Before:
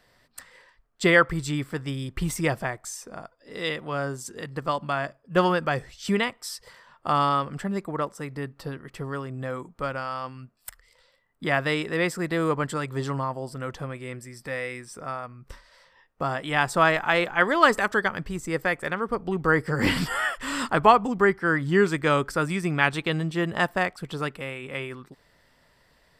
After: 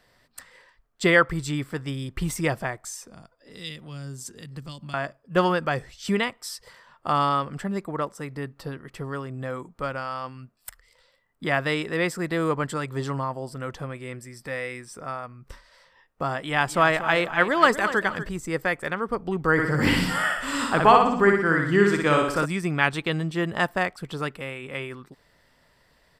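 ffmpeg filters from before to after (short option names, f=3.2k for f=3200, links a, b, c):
-filter_complex "[0:a]asettb=1/sr,asplit=3[a][b][c];[a]atrim=end=2.974[d];[b]atrim=start=2.97:end=4.94,asetpts=PTS-STARTPTS,afade=t=in:d=0.004:c=qsin,afade=t=out:st=1.966:d=0.004:c=qsin,acrossover=split=230|3000[e][f][g];[f]acompressor=threshold=-48dB:ratio=6:attack=3.2:release=140:knee=2.83:detection=peak[h];[e][h][g]amix=inputs=3:normalize=0[i];[c]atrim=start=4.936[j];[d][i]acrossfade=d=0.004:c1=hsin:c2=qsin[k];[k][j]acrossfade=d=0.004:c1=qsin:c2=hsin,asettb=1/sr,asplit=3[l][m][n];[l]atrim=end=16.354[o];[m]atrim=start=16.35:end=18.29,asetpts=PTS-STARTPTS,afade=t=in:d=0.004:c=qsin,afade=t=out:st=1.936:d=0.004:c=qsin,aecho=1:1:239|478|717|956:0.237|0.083|0.029|0.0102,atrim=end_sample=85554[p];[n]atrim=start=18.286[q];[o][p]acrossfade=d=0.004:c1=hsin:c2=qsin[r];[r][q]acrossfade=d=0.004:c1=qsin:c2=hsin,asplit=3[s][t][u];[s]afade=t=out:st=19.57:d=0.02[v];[t]aecho=1:1:60|120|180|240|300|360|420:0.668|0.341|0.174|0.0887|0.0452|0.0231|0.0118,afade=t=in:st=19.57:d=0.02,afade=t=out:st=22.44:d=0.02[w];[u]afade=t=in:st=22.44:d=0.02[x];[v][w][x]amix=inputs=3:normalize=0"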